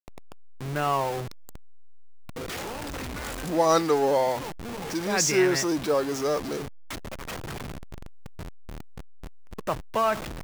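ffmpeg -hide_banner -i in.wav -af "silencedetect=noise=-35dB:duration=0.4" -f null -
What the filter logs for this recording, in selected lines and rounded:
silence_start: 1.56
silence_end: 2.29 | silence_duration: 0.74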